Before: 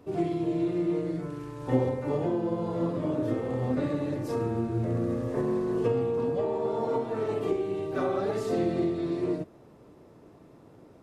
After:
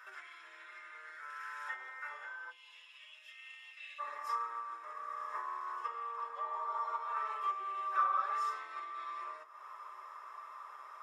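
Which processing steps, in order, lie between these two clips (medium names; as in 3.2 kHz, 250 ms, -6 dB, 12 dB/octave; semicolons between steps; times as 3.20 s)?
compression 4:1, threshold -41 dBFS, peak gain reduction 17.5 dB; ladder high-pass 1.4 kHz, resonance 80%, from 2.50 s 2.6 kHz, from 3.98 s 1.1 kHz; reverberation RT60 0.15 s, pre-delay 3 ms, DRR 2 dB; trim +13 dB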